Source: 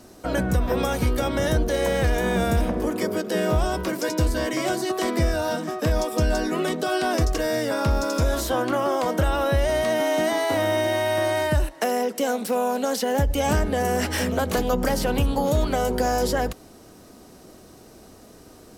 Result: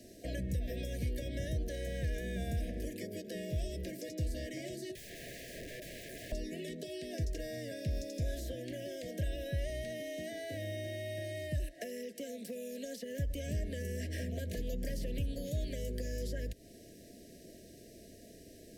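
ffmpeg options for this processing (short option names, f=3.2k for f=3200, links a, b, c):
-filter_complex "[0:a]asettb=1/sr,asplit=3[a][b][c];[a]atrim=end=4.954[d];[b]atrim=start=4.95:end=6.32,asetpts=PTS-STARTPTS,afade=t=in:d=0.004:c=qsin,afade=t=out:st=1.366:d=0.004:c=qsin,aeval=exprs='(mod(25.1*val(0)+1,2)-1)/25.1':c=same[e];[c]atrim=start=6.316[f];[d][e]acrossfade=d=0.004:c1=hsin:c2=qsin[g];[g][f]acrossfade=d=0.004:c1=qsin:c2=hsin,afftfilt=real='re*(1-between(b*sr/4096,710,1600))':imag='im*(1-between(b*sr/4096,710,1600))':win_size=4096:overlap=0.75,acrossover=split=130|1700[h][i][j];[h]acompressor=threshold=-27dB:ratio=4[k];[i]acompressor=threshold=-37dB:ratio=4[l];[j]acompressor=threshold=-45dB:ratio=4[m];[k][l][m]amix=inputs=3:normalize=0,volume=-6.5dB"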